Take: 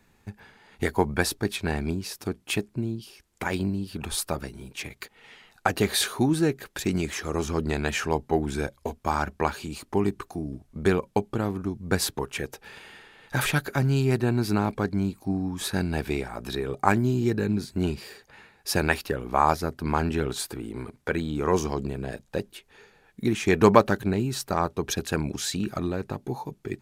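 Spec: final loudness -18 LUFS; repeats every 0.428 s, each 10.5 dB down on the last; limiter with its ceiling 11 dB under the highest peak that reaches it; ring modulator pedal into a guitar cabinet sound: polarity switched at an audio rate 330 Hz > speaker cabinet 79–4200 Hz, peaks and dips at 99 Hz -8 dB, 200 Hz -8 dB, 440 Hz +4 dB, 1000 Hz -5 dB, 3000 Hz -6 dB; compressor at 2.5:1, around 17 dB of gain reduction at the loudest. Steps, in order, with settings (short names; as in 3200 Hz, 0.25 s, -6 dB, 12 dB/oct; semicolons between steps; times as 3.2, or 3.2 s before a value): compressor 2.5:1, threshold -38 dBFS; limiter -26.5 dBFS; feedback echo 0.428 s, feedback 30%, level -10.5 dB; polarity switched at an audio rate 330 Hz; speaker cabinet 79–4200 Hz, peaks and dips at 99 Hz -8 dB, 200 Hz -8 dB, 440 Hz +4 dB, 1000 Hz -5 dB, 3000 Hz -6 dB; gain +22.5 dB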